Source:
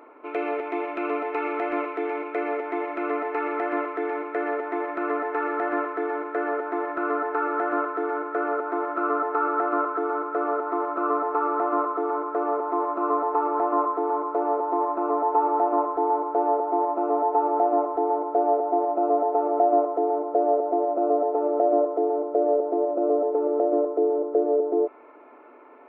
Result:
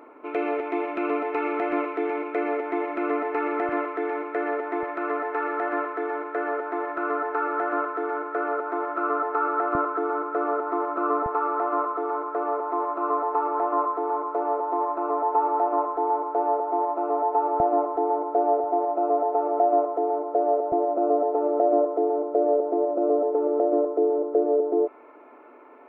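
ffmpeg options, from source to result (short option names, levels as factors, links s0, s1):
-af "asetnsamples=n=441:p=0,asendcmd='3.69 equalizer g 0.5;4.83 equalizer g -7.5;9.75 equalizer g 0.5;11.26 equalizer g -11.5;17.6 equalizer g -2;18.64 equalizer g -8;20.72 equalizer g 1.5',equalizer=f=170:t=o:w=1.3:g=7.5"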